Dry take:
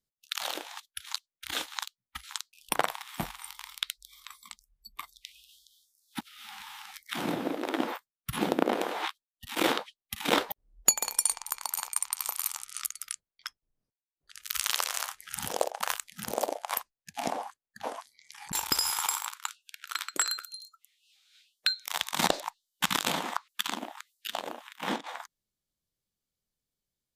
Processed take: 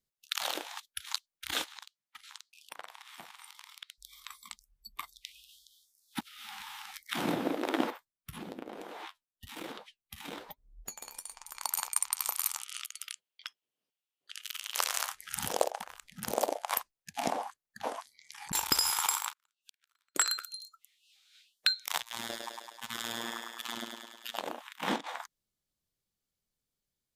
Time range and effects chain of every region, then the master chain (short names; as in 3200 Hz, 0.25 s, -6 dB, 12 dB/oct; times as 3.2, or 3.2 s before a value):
1.64–3.98 weighting filter A + compressor 2.5:1, threshold -50 dBFS
7.9–11.55 low shelf 200 Hz +8.5 dB + compressor 3:1, threshold -39 dBFS + flange 1.1 Hz, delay 4.1 ms, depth 9.3 ms, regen -55%
12.6–14.75 HPF 340 Hz + bell 3000 Hz +11.5 dB 0.62 oct + compressor 12:1, threshold -35 dBFS
15.82–16.23 tilt -2.5 dB/oct + compressor 16:1, threshold -41 dBFS
19.32–20.15 compressor 3:1, threshold -48 dBFS + flipped gate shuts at -38 dBFS, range -28 dB
22–24.38 level quantiser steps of 19 dB + robotiser 116 Hz + thinning echo 0.104 s, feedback 67%, high-pass 280 Hz, level -3 dB
whole clip: dry